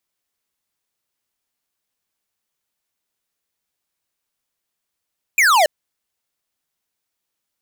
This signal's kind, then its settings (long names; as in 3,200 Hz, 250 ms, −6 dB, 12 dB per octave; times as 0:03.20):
single falling chirp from 2,500 Hz, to 570 Hz, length 0.28 s square, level −13 dB